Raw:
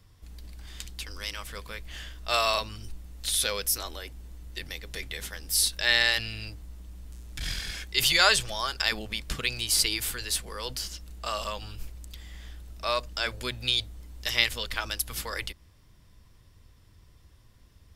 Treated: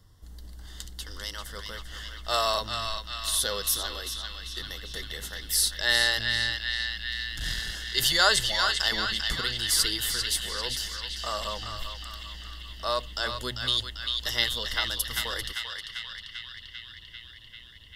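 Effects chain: Butterworth band-stop 2.4 kHz, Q 3; band-passed feedback delay 394 ms, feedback 79%, band-pass 2.6 kHz, level -3 dB

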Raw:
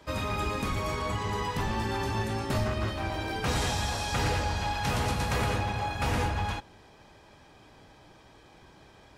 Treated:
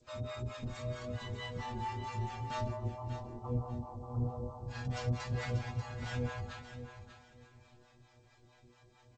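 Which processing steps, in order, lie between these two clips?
2.68–4.66 s: steep low-pass 1.2 kHz 96 dB/octave; bass shelf 160 Hz +7.5 dB; inharmonic resonator 120 Hz, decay 0.45 s, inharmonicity 0.002; harmonic tremolo 4.5 Hz, depth 100%, crossover 580 Hz; feedback delay 588 ms, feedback 24%, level -10.5 dB; trim +5.5 dB; G.722 64 kbps 16 kHz

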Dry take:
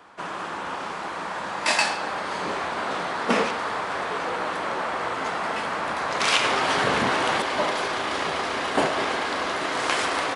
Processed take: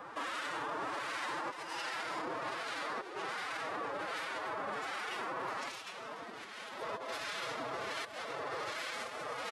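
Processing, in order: speed mistake 44.1 kHz file played as 48 kHz; compressor with a negative ratio -31 dBFS, ratio -0.5; harmonic tremolo 1.3 Hz, depth 70%, crossover 1.5 kHz; on a send: delay 290 ms -15.5 dB; on the sum: formant-preserving pitch shift +7.5 st; peak limiter -30.5 dBFS, peak gain reduction 11.5 dB

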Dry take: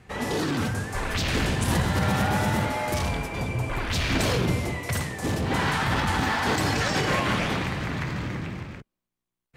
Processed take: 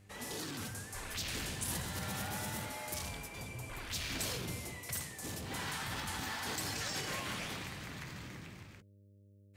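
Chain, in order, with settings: mains buzz 100 Hz, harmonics 6, -44 dBFS -8 dB/octave; pre-emphasis filter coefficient 0.8; in parallel at -11.5 dB: saturation -35 dBFS, distortion -11 dB; on the sum: trim -5.5 dB

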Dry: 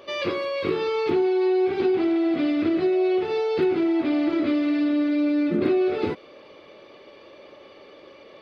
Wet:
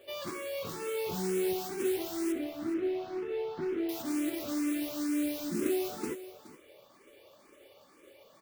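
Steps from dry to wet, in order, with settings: 1.12–1.53 s: octave divider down 1 oct, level -2 dB; modulation noise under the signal 11 dB; 2.32–3.89 s: distance through air 320 m; delay 419 ms -15 dB; barber-pole phaser +2.1 Hz; trim -8.5 dB

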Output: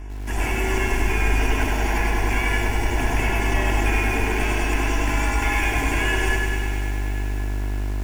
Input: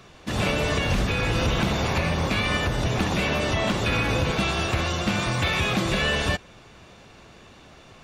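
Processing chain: two-band feedback delay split 1.7 kHz, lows 103 ms, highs 547 ms, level -14.5 dB; in parallel at -9 dB: wavefolder -22.5 dBFS; on the sum: treble shelf 6.9 kHz +6.5 dB; frequency shift -62 Hz; peaking EQ 1.1 kHz +5.5 dB 0.54 oct; on a send: bucket-brigade echo 369 ms, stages 4096, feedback 78%, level -18 dB; on the sum: mains buzz 50 Hz, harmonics 37, -31 dBFS -8 dB/octave; static phaser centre 800 Hz, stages 8; bit-crushed delay 100 ms, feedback 80%, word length 7-bit, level -5 dB; trim -1 dB

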